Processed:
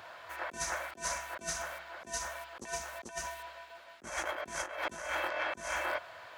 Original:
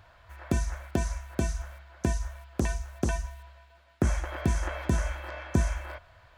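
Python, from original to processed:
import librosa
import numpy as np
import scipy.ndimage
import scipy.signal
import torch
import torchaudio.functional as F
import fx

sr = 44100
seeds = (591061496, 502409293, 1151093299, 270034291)

y = scipy.signal.sosfilt(scipy.signal.butter(2, 330.0, 'highpass', fs=sr, output='sos'), x)
y = fx.over_compress(y, sr, threshold_db=-42.0, ratio=-0.5)
y = F.gain(torch.from_numpy(y), 4.5).numpy()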